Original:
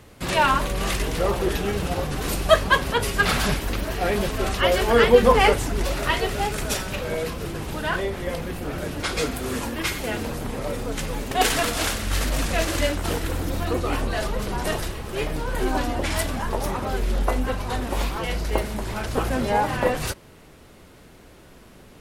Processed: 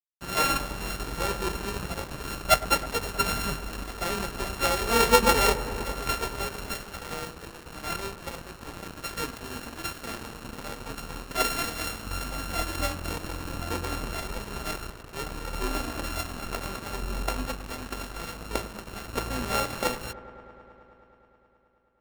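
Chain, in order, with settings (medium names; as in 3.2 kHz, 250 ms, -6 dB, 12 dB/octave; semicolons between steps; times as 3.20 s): sorted samples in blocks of 32 samples; hum notches 50/100/150 Hz; crossover distortion -30.5 dBFS; feedback echo behind a low-pass 106 ms, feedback 83%, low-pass 1.7 kHz, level -16 dB; trim -4 dB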